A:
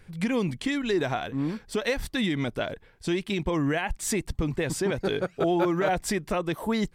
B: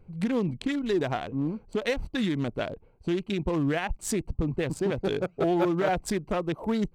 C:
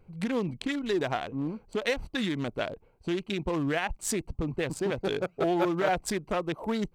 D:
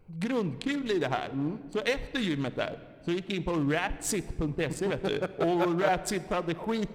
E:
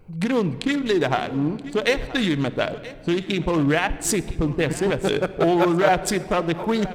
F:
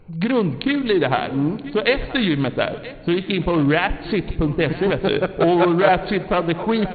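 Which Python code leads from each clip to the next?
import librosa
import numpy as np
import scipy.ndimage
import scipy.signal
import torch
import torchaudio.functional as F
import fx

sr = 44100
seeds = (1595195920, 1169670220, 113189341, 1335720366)

y1 = fx.wiener(x, sr, points=25)
y2 = fx.low_shelf(y1, sr, hz=420.0, db=-6.5)
y2 = y2 * 10.0 ** (1.5 / 20.0)
y3 = fx.room_shoebox(y2, sr, seeds[0], volume_m3=3400.0, walls='mixed', distance_m=0.48)
y4 = y3 + 10.0 ** (-17.5 / 20.0) * np.pad(y3, (int(977 * sr / 1000.0), 0))[:len(y3)]
y4 = y4 * 10.0 ** (8.0 / 20.0)
y5 = fx.brickwall_lowpass(y4, sr, high_hz=4500.0)
y5 = y5 * 10.0 ** (2.5 / 20.0)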